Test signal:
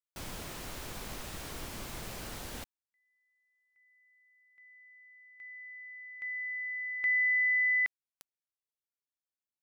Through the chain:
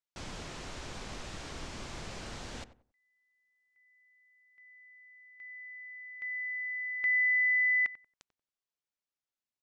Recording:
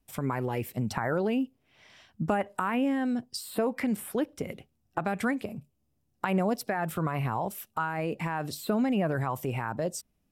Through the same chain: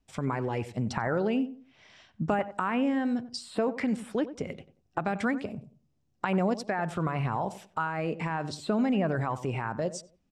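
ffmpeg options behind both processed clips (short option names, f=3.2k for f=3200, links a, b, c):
-filter_complex "[0:a]lowpass=f=7.4k:w=0.5412,lowpass=f=7.4k:w=1.3066,asplit=2[a][b];[b]adelay=92,lowpass=f=1.2k:p=1,volume=-13dB,asplit=2[c][d];[d]adelay=92,lowpass=f=1.2k:p=1,volume=0.29,asplit=2[e][f];[f]adelay=92,lowpass=f=1.2k:p=1,volume=0.29[g];[a][c][e][g]amix=inputs=4:normalize=0"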